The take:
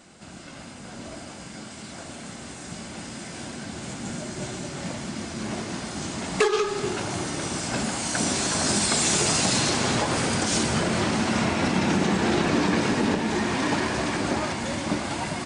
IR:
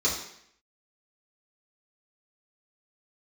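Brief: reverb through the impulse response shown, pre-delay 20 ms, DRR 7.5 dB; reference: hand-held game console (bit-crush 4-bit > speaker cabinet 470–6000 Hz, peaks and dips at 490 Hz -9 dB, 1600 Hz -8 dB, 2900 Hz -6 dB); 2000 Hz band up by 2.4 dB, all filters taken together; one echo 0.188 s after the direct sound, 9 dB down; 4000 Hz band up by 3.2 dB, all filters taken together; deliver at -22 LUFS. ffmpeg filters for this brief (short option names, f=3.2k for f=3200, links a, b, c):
-filter_complex "[0:a]equalizer=f=2k:t=o:g=7,equalizer=f=4k:t=o:g=4.5,aecho=1:1:188:0.355,asplit=2[a][b];[1:a]atrim=start_sample=2205,adelay=20[c];[b][c]afir=irnorm=-1:irlink=0,volume=-18.5dB[d];[a][d]amix=inputs=2:normalize=0,acrusher=bits=3:mix=0:aa=0.000001,highpass=470,equalizer=f=490:t=q:w=4:g=-9,equalizer=f=1.6k:t=q:w=4:g=-8,equalizer=f=2.9k:t=q:w=4:g=-6,lowpass=f=6k:w=0.5412,lowpass=f=6k:w=1.3066,volume=1.5dB"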